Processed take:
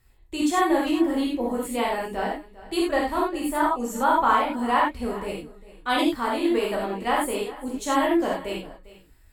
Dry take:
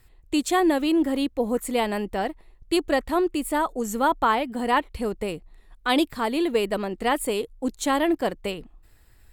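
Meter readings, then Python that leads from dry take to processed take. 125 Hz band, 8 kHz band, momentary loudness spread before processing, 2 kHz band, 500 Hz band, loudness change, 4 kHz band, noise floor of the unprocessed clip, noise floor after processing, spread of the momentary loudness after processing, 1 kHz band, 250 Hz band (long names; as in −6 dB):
can't be measured, −1.5 dB, 10 LU, +0.5 dB, −1.0 dB, +0.5 dB, −1.5 dB, −55 dBFS, −54 dBFS, 11 LU, +2.0 dB, −0.5 dB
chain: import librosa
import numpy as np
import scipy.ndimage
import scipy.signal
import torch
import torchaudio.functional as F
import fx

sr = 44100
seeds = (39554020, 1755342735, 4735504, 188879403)

p1 = fx.rev_gated(x, sr, seeds[0], gate_ms=120, shape='flat', drr_db=-4.0)
p2 = fx.dynamic_eq(p1, sr, hz=1100.0, q=0.99, threshold_db=-30.0, ratio=4.0, max_db=5)
p3 = p2 + fx.echo_single(p2, sr, ms=400, db=-18.0, dry=0)
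y = p3 * librosa.db_to_amplitude(-7.5)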